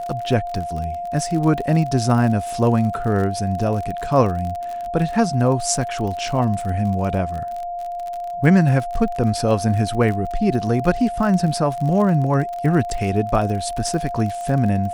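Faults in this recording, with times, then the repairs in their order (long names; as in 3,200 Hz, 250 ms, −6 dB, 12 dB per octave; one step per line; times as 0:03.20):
surface crackle 47 per second −26 dBFS
whistle 700 Hz −25 dBFS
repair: click removal
notch filter 700 Hz, Q 30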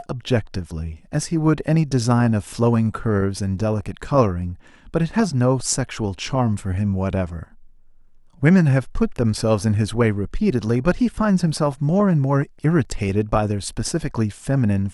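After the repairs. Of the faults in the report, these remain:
none of them is left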